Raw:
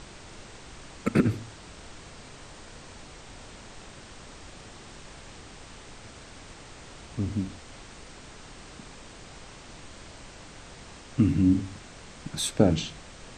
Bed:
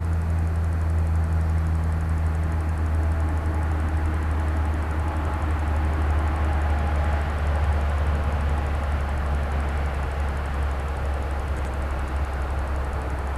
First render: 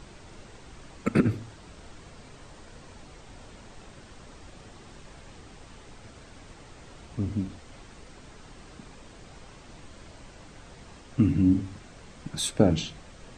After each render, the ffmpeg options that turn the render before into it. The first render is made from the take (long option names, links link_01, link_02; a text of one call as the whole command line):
ffmpeg -i in.wav -af "afftdn=noise_reduction=6:noise_floor=-47" out.wav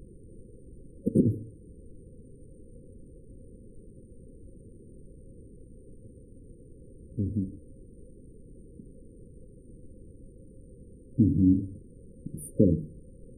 ffmpeg -i in.wav -af "afftfilt=real='re*(1-between(b*sr/4096,540,8800))':imag='im*(1-between(b*sr/4096,540,8800))':win_size=4096:overlap=0.75,bandreject=frequency=149.5:width_type=h:width=4,bandreject=frequency=299:width_type=h:width=4,bandreject=frequency=448.5:width_type=h:width=4,bandreject=frequency=598:width_type=h:width=4" out.wav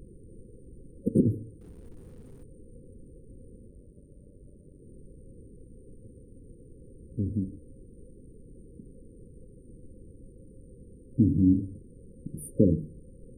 ffmpeg -i in.wav -filter_complex "[0:a]asettb=1/sr,asplit=3[link_01][link_02][link_03];[link_01]atrim=end=1.614[link_04];[link_02]atrim=start=1.61:end=2.44,asetpts=PTS-STARTPTS,afade=type=in:duration=0.004:curve=qsin,afade=type=out:start_time=0.826:duration=0.004:curve=qsin,aeval=exprs='val(0)+0.5*0.00168*sgn(val(0))':channel_layout=same[link_05];[link_03]atrim=start=2.436[link_06];[link_04][link_05]acrossfade=duration=0.004:curve1=hsin:curve2=qsin[link_07];[link_07][link_06]acrossfade=duration=0.004:curve1=qsin:curve2=hsin,asettb=1/sr,asplit=3[link_08][link_09][link_10];[link_08]atrim=end=3.674[link_11];[link_09]atrim=start=3.67:end=4.82,asetpts=PTS-STARTPTS,afade=type=in:duration=0.004:curve=qsin,afade=type=out:start_time=1.146:duration=0.004:curve=qsin,aeval=exprs='val(0)*sin(2*PI*47*n/s)':channel_layout=same[link_12];[link_10]atrim=start=4.816[link_13];[link_11][link_12]acrossfade=duration=0.004:curve1=hsin:curve2=qsin[link_14];[link_14][link_13]acrossfade=duration=0.004:curve1=qsin:curve2=hsin" out.wav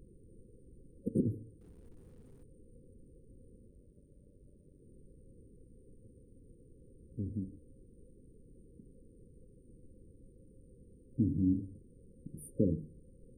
ffmpeg -i in.wav -af "volume=-8.5dB" out.wav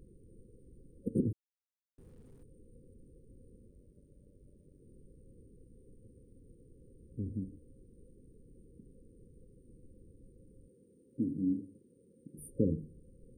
ffmpeg -i in.wav -filter_complex "[0:a]asettb=1/sr,asplit=3[link_01][link_02][link_03];[link_01]atrim=end=10.684[link_04];[link_02]atrim=start=10.68:end=12.38,asetpts=PTS-STARTPTS,afade=type=in:duration=0.004:curve=qsin,afade=type=out:start_time=1.696:duration=0.004:curve=qsin,highpass=210[link_05];[link_03]atrim=start=12.376[link_06];[link_04][link_05]acrossfade=duration=0.004:curve1=hsin:curve2=qsin[link_07];[link_07][link_06]acrossfade=duration=0.004:curve1=qsin:curve2=hsin,asplit=3[link_08][link_09][link_10];[link_08]atrim=end=1.33,asetpts=PTS-STARTPTS,afade=type=out:start_time=1.326:duration=0.004:curve=hsin[link_11];[link_09]atrim=start=1.33:end=1.98,asetpts=PTS-STARTPTS,volume=0[link_12];[link_10]atrim=start=1.98,asetpts=PTS-STARTPTS,afade=type=in:duration=0.004:curve=hsin[link_13];[link_11][link_12][link_13]concat=n=3:v=0:a=1" out.wav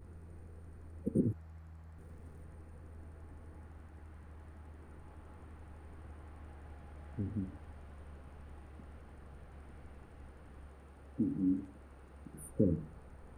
ffmpeg -i in.wav -i bed.wav -filter_complex "[1:a]volume=-29.5dB[link_01];[0:a][link_01]amix=inputs=2:normalize=0" out.wav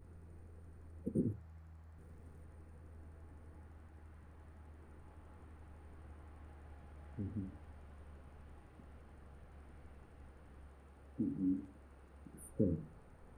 ffmpeg -i in.wav -af "flanger=delay=7:depth=10:regen=-75:speed=0.23:shape=triangular" out.wav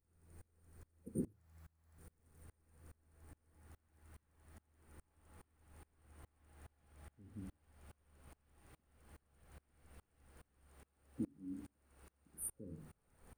ffmpeg -i in.wav -af "crystalizer=i=4.5:c=0,aeval=exprs='val(0)*pow(10,-29*if(lt(mod(-2.4*n/s,1),2*abs(-2.4)/1000),1-mod(-2.4*n/s,1)/(2*abs(-2.4)/1000),(mod(-2.4*n/s,1)-2*abs(-2.4)/1000)/(1-2*abs(-2.4)/1000))/20)':channel_layout=same" out.wav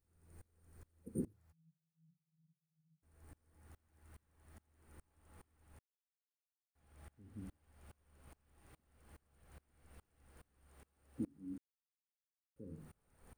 ffmpeg -i in.wav -filter_complex "[0:a]asplit=3[link_01][link_02][link_03];[link_01]afade=type=out:start_time=1.51:duration=0.02[link_04];[link_02]asuperpass=centerf=160:order=12:qfactor=4.4,afade=type=in:start_time=1.51:duration=0.02,afade=type=out:start_time=3.02:duration=0.02[link_05];[link_03]afade=type=in:start_time=3.02:duration=0.02[link_06];[link_04][link_05][link_06]amix=inputs=3:normalize=0,asplit=5[link_07][link_08][link_09][link_10][link_11];[link_07]atrim=end=5.79,asetpts=PTS-STARTPTS,afade=type=out:start_time=5.786:duration=0.004:curve=hsin[link_12];[link_08]atrim=start=5.79:end=6.75,asetpts=PTS-STARTPTS,volume=0[link_13];[link_09]atrim=start=6.75:end=11.58,asetpts=PTS-STARTPTS,afade=type=in:duration=0.004:curve=hsin,afade=type=out:start_time=4.826:duration=0.004:curve=hsin[link_14];[link_10]atrim=start=11.58:end=12.56,asetpts=PTS-STARTPTS,volume=0[link_15];[link_11]atrim=start=12.56,asetpts=PTS-STARTPTS,afade=type=in:duration=0.004:curve=hsin[link_16];[link_12][link_13][link_14][link_15][link_16]concat=n=5:v=0:a=1" out.wav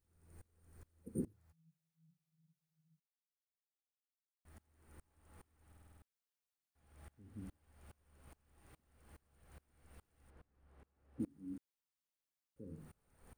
ffmpeg -i in.wav -filter_complex "[0:a]asettb=1/sr,asplit=3[link_01][link_02][link_03];[link_01]atrim=end=10.304[link_04];[link_02]atrim=start=10.3:end=11.2,asetpts=PTS-STARTPTS,afade=type=in:duration=0.004:curve=qsin,afade=type=out:start_time=0.896:duration=0.004:curve=qsin,lowpass=frequency=1400:poles=1[link_05];[link_03]atrim=start=11.196[link_06];[link_04][link_05]acrossfade=duration=0.004:curve1=hsin:curve2=qsin[link_07];[link_07][link_06]acrossfade=duration=0.004:curve1=qsin:curve2=hsin,asplit=10[link_08][link_09][link_10][link_11][link_12][link_13][link_14][link_15][link_16][link_17];[link_08]atrim=end=3,asetpts=PTS-STARTPTS,afade=type=out:start_time=2.996:duration=0.004:curve=hsin[link_18];[link_09]atrim=start=3:end=4.45,asetpts=PTS-STARTPTS,volume=0[link_19];[link_10]atrim=start=4.45:end=5.722,asetpts=PTS-STARTPTS,afade=type=in:duration=0.004:curve=hsin[link_20];[link_11]atrim=start=5.668:end=5.722[link_21];[link_12]atrim=start=5.668:end=5.722[link_22];[link_13]atrim=start=5.668:end=5.722[link_23];[link_14]atrim=start=5.668:end=5.722[link_24];[link_15]atrim=start=5.668:end=5.722[link_25];[link_16]atrim=start=5.668:end=5.722[link_26];[link_17]atrim=start=6.018[link_27];[link_18][link_19][link_20]concat=n=3:v=0:a=1[link_28];[link_28][link_21]acrossfade=duration=0.004:curve1=hsin:curve2=hsin[link_29];[link_29][link_22]acrossfade=duration=0.004:curve1=hsin:curve2=hsin[link_30];[link_30][link_23]acrossfade=duration=0.004:curve1=hsin:curve2=hsin[link_31];[link_31][link_24]acrossfade=duration=0.004:curve1=hsin:curve2=hsin[link_32];[link_32][link_25]acrossfade=duration=0.004:curve1=hsin:curve2=hsin[link_33];[link_33][link_26]acrossfade=duration=0.004:curve1=hsin:curve2=hsin[link_34];[link_34][link_27]acrossfade=duration=0.004:curve1=hsin:curve2=hsin" out.wav